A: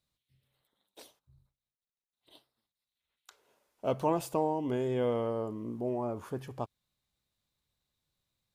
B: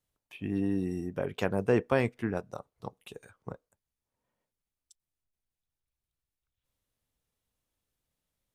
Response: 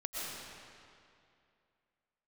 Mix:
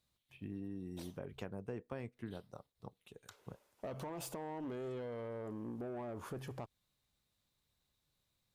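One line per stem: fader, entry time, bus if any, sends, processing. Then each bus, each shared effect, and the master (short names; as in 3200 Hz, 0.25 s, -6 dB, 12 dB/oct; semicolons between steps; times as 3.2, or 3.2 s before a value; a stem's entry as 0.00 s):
+2.0 dB, 0.00 s, no send, limiter -28 dBFS, peak gain reduction 11.5 dB; tube stage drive 35 dB, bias 0.3
-13.0 dB, 0.00 s, no send, low shelf 340 Hz +6.5 dB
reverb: off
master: compressor 4:1, threshold -41 dBFS, peak gain reduction 10 dB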